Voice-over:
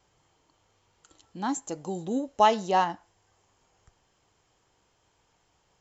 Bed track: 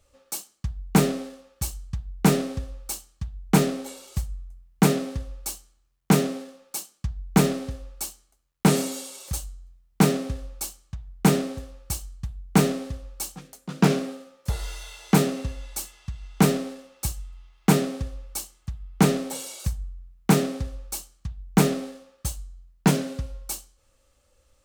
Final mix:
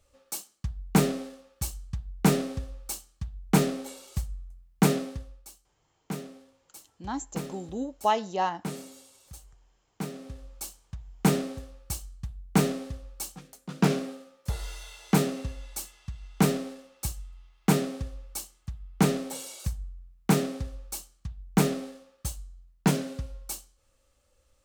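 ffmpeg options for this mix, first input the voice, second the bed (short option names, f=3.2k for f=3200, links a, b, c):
-filter_complex "[0:a]adelay=5650,volume=-4dB[a];[1:a]volume=9.5dB,afade=t=out:st=4.96:d=0.5:silence=0.211349,afade=t=in:st=10.11:d=0.72:silence=0.237137[b];[a][b]amix=inputs=2:normalize=0"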